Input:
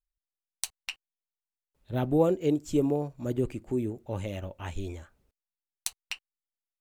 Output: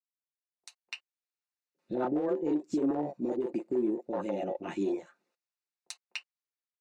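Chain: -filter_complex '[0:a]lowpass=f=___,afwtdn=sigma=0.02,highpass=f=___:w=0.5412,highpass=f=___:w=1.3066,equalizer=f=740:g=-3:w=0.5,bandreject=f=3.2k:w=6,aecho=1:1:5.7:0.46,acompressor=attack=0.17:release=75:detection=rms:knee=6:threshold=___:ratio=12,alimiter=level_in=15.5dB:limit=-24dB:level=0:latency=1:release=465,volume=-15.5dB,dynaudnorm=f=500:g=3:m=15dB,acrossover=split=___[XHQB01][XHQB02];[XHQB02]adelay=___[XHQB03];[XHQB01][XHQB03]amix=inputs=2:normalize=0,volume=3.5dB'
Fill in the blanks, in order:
5.6k, 270, 270, -31dB, 450, 40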